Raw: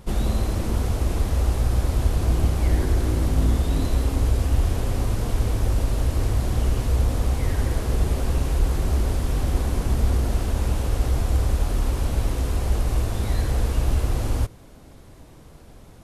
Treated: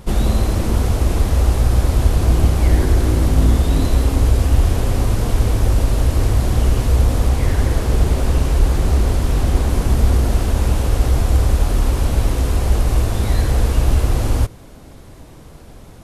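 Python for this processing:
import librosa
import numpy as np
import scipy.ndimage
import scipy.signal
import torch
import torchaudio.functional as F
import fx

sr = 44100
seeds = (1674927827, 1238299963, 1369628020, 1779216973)

y = fx.doppler_dist(x, sr, depth_ms=0.35, at=(7.29, 9.69))
y = y * 10.0 ** (6.5 / 20.0)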